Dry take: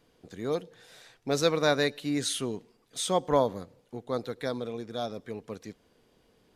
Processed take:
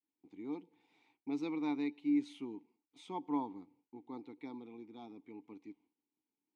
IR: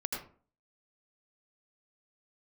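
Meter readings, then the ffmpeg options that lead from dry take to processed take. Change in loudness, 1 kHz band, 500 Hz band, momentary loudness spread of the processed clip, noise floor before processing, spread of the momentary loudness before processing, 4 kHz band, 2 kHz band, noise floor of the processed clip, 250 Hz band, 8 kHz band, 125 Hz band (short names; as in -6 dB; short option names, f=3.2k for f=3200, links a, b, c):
-10.0 dB, -12.5 dB, -20.5 dB, 19 LU, -67 dBFS, 18 LU, -23.5 dB, -18.5 dB, under -85 dBFS, -3.0 dB, under -30 dB, -20.5 dB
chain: -filter_complex "[0:a]agate=range=-33dB:threshold=-53dB:ratio=3:detection=peak,asplit=3[a][b][c];[a]bandpass=f=300:t=q:w=8,volume=0dB[d];[b]bandpass=f=870:t=q:w=8,volume=-6dB[e];[c]bandpass=f=2.24k:t=q:w=8,volume=-9dB[f];[d][e][f]amix=inputs=3:normalize=0"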